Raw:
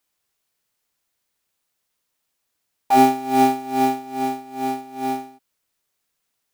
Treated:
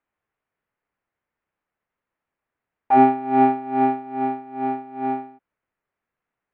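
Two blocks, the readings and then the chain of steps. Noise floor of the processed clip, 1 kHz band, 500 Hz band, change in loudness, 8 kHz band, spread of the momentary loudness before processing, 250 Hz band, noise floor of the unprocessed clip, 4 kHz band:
under -85 dBFS, 0.0 dB, 0.0 dB, 0.0 dB, under -40 dB, 11 LU, 0.0 dB, -76 dBFS, under -15 dB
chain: low-pass 2.1 kHz 24 dB/octave

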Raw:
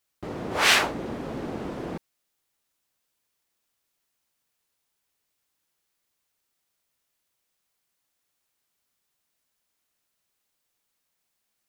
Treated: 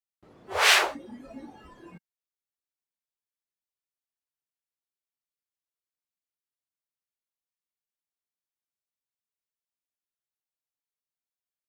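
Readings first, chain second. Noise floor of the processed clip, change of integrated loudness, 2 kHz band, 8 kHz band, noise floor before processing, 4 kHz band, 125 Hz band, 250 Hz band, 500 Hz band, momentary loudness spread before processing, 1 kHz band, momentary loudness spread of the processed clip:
under -85 dBFS, +3.0 dB, 0.0 dB, 0.0 dB, -79 dBFS, 0.0 dB, -15.5 dB, -10.5 dB, -3.5 dB, 18 LU, -0.5 dB, 14 LU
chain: spectral noise reduction 21 dB

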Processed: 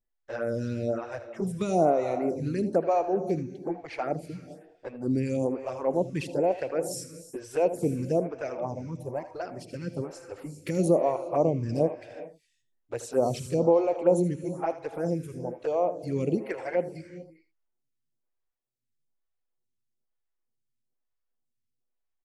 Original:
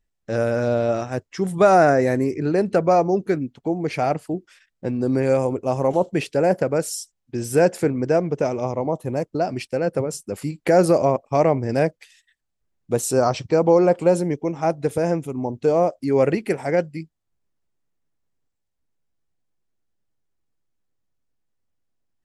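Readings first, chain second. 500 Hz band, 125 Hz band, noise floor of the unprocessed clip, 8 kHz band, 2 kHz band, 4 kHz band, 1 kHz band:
-7.5 dB, -7.0 dB, -77 dBFS, -10.5 dB, -12.5 dB, -10.0 dB, -9.0 dB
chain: touch-sensitive flanger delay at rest 8.2 ms, full sweep at -15 dBFS; on a send: delay 79 ms -13.5 dB; on the sum: gated-style reverb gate 440 ms rising, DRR 11.5 dB; lamp-driven phase shifter 1.1 Hz; trim -3.5 dB

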